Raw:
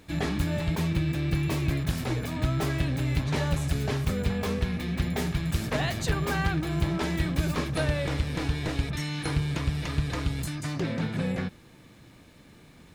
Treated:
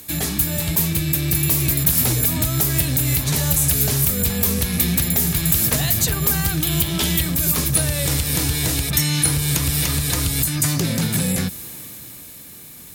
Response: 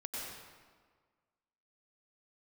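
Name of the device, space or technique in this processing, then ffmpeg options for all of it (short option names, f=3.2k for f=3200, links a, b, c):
FM broadcast chain: -filter_complex "[0:a]asettb=1/sr,asplit=3[a][b][c];[a]atrim=end=6.604[d];[b]atrim=start=6.6:end=7.21,asetpts=PTS-STARTPTS,afade=t=in:d=0.004:c=qsin,afade=t=out:st=0.606:d=0.004:c=qsin,equalizer=f=3.2k:t=o:w=0.62:g=11[e];[c]atrim=start=7.206[f];[d][e]acrossfade=d=0.004:c1=hsin:c2=qsin[g];[g][f]acrossfade=d=0.004:c1=qsin:c2=hsin,highpass=f=40:w=0.5412,highpass=f=40:w=1.3066,dynaudnorm=f=100:g=31:m=11.5dB,acrossover=split=210|4100[h][i][j];[h]acompressor=threshold=-24dB:ratio=4[k];[i]acompressor=threshold=-33dB:ratio=4[l];[j]acompressor=threshold=-43dB:ratio=4[m];[k][l][m]amix=inputs=3:normalize=0,aemphasis=mode=production:type=50fm,alimiter=limit=-15.5dB:level=0:latency=1:release=151,asoftclip=type=hard:threshold=-19.5dB,lowpass=f=15k:w=0.5412,lowpass=f=15k:w=1.3066,aemphasis=mode=production:type=50fm,volume=5dB"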